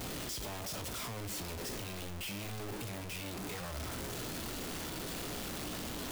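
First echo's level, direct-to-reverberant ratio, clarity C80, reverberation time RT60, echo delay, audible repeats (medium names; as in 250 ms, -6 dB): no echo, 8.5 dB, 19.0 dB, 0.40 s, no echo, no echo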